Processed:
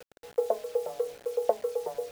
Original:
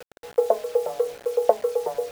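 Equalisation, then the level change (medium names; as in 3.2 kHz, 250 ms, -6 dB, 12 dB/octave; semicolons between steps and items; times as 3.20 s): peaking EQ 1.1 kHz -3 dB 2.1 oct; -5.5 dB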